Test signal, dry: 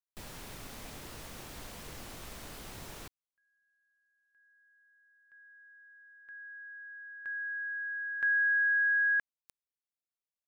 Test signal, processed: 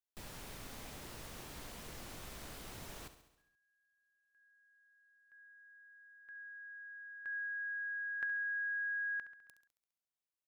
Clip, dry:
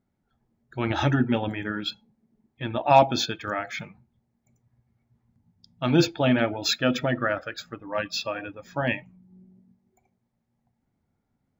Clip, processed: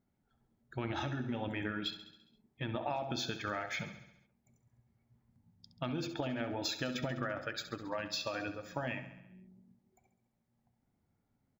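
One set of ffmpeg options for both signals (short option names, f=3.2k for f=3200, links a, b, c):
-filter_complex "[0:a]acompressor=threshold=-35dB:ratio=16:attack=62:release=55:knee=1:detection=rms,asplit=2[a][b];[b]aecho=0:1:68|136|204|272|340|408|476:0.251|0.151|0.0904|0.0543|0.0326|0.0195|0.0117[c];[a][c]amix=inputs=2:normalize=0,volume=-3.5dB"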